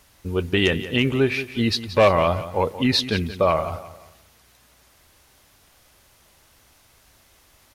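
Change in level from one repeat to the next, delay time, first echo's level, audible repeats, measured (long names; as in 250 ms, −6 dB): −9.0 dB, 177 ms, −14.0 dB, 3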